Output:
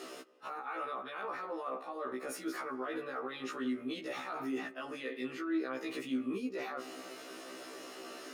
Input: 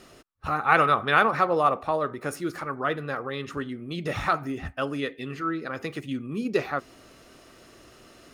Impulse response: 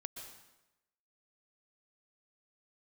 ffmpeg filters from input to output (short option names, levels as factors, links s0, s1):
-filter_complex "[0:a]highpass=f=250:w=0.5412,highpass=f=250:w=1.3066,areverse,acompressor=threshold=0.0178:ratio=12,areverse,alimiter=level_in=3.98:limit=0.0631:level=0:latency=1:release=30,volume=0.251,asplit=2[s0][s1];[s1]lowpass=f=1600:p=1[s2];[1:a]atrim=start_sample=2205,asetrate=34398,aresample=44100[s3];[s2][s3]afir=irnorm=-1:irlink=0,volume=0.299[s4];[s0][s4]amix=inputs=2:normalize=0,afftfilt=real='re*1.73*eq(mod(b,3),0)':imag='im*1.73*eq(mod(b,3),0)':win_size=2048:overlap=0.75,volume=2.11"